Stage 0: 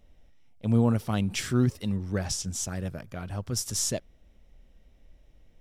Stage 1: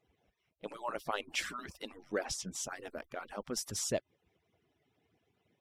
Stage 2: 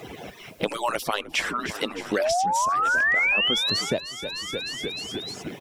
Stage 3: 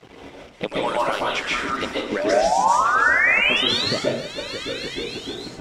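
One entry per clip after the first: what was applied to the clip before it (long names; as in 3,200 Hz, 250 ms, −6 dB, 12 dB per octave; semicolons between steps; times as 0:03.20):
harmonic-percussive split with one part muted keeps percussive; bass and treble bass −9 dB, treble −8 dB
sound drawn into the spectrogram rise, 0:02.19–0:03.82, 570–4,700 Hz −29 dBFS; echo with shifted repeats 305 ms, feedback 53%, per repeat −57 Hz, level −17 dB; multiband upward and downward compressor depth 100%; level +7 dB
dead-zone distortion −41.5 dBFS; high-frequency loss of the air 62 metres; dense smooth reverb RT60 0.58 s, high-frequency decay 0.75×, pre-delay 115 ms, DRR −4.5 dB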